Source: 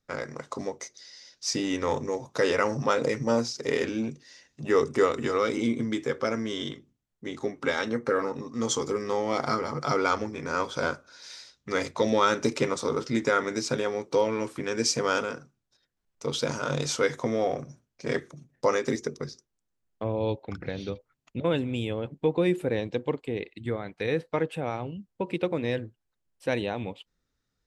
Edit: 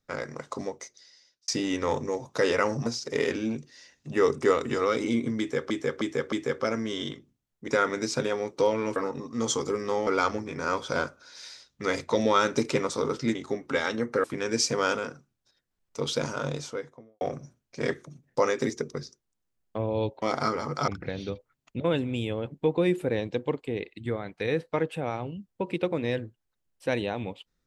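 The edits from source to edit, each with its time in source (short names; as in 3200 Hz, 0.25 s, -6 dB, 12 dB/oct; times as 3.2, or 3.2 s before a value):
0.59–1.48 fade out
2.86–3.39 cut
5.92–6.23 loop, 4 plays
7.28–8.17 swap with 13.22–14.5
9.28–9.94 move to 20.48
16.41–17.47 studio fade out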